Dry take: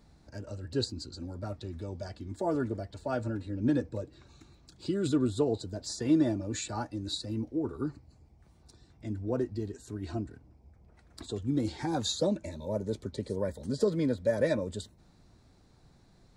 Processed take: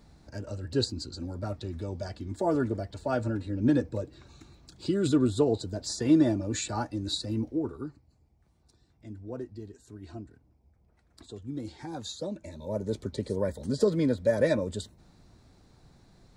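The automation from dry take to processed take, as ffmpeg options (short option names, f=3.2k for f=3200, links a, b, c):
-af "volume=13.5dB,afade=t=out:st=7.48:d=0.43:silence=0.298538,afade=t=in:st=12.3:d=0.71:silence=0.316228"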